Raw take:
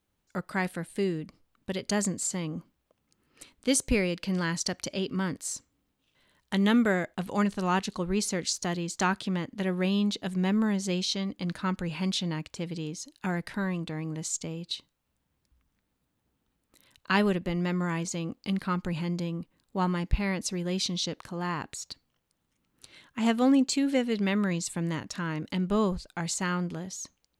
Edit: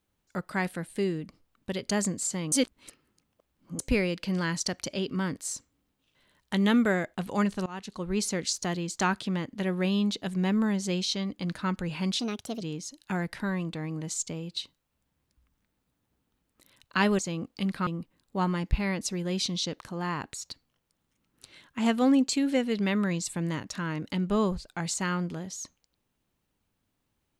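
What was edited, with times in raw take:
0:02.52–0:03.79: reverse
0:07.66–0:08.21: fade in, from −22 dB
0:12.19–0:12.75: play speed 134%
0:17.33–0:18.06: remove
0:18.74–0:19.27: remove

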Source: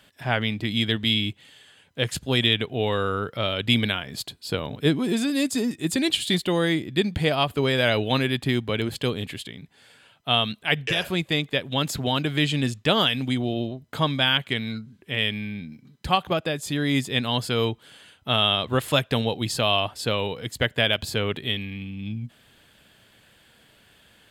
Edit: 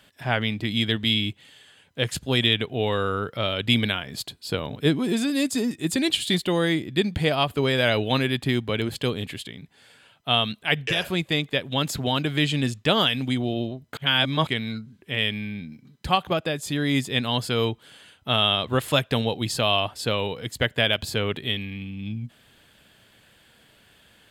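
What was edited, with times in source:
0:13.97–0:14.47: reverse

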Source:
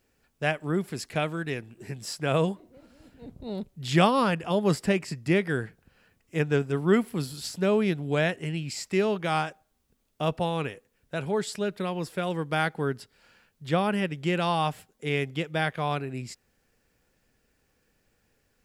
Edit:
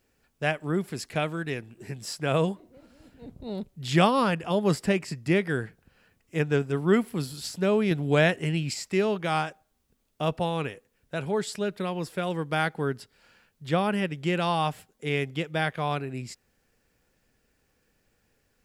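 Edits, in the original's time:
0:07.91–0:08.74: clip gain +4 dB

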